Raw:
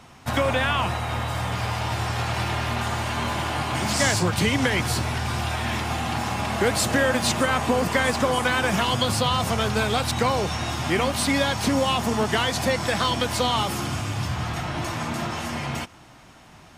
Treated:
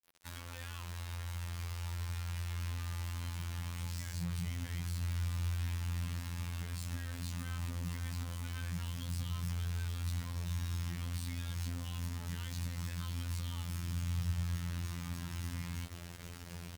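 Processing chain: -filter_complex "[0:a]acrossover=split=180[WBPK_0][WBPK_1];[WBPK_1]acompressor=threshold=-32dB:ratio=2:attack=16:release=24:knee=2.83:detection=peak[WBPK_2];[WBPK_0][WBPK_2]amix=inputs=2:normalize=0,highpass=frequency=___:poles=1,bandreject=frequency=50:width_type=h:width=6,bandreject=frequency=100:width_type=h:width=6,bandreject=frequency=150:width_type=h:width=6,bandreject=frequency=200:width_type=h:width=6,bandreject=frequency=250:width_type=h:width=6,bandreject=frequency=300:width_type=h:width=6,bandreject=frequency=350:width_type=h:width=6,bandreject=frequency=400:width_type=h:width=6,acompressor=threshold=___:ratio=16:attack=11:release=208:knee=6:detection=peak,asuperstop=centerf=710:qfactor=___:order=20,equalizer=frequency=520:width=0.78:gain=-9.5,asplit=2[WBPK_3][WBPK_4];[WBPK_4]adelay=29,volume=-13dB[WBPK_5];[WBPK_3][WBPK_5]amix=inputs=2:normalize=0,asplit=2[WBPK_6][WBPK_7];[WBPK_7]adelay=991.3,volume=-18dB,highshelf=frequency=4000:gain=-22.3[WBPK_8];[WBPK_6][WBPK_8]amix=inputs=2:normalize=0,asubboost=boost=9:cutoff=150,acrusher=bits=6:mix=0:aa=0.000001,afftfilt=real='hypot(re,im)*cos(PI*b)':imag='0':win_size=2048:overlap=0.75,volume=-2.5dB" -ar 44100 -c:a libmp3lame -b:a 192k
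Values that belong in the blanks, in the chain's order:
67, -38dB, 4.9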